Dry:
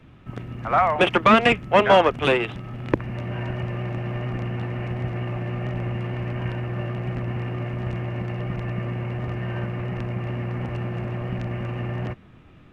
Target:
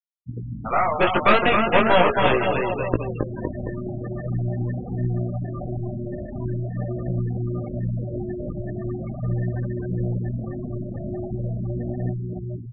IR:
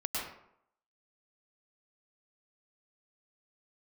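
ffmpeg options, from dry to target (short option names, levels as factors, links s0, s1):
-filter_complex "[0:a]aecho=1:1:270|513|731.7|928.5|1106:0.631|0.398|0.251|0.158|0.1,asplit=2[s0][s1];[s1]acompressor=threshold=0.0398:ratio=12,volume=0.944[s2];[s0][s2]amix=inputs=2:normalize=0,aeval=exprs='0.944*(cos(1*acos(clip(val(0)/0.944,-1,1)))-cos(1*PI/2))+0.188*(cos(4*acos(clip(val(0)/0.944,-1,1)))-cos(4*PI/2))':c=same,flanger=delay=16:depth=4.1:speed=0.41,afftfilt=real='re*gte(hypot(re,im),0.0891)':imag='im*gte(hypot(re,im),0.0891)':win_size=1024:overlap=0.75,volume=0.891"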